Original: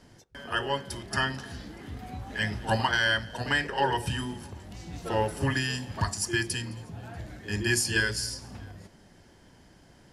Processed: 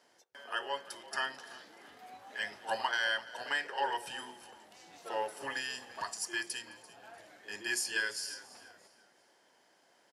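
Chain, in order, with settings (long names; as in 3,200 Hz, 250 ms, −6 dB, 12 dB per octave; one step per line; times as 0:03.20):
Chebyshev high-pass filter 600 Hz, order 2
on a send: echo with shifted repeats 340 ms, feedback 34%, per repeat −33 Hz, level −18.5 dB
on the sum: level −6 dB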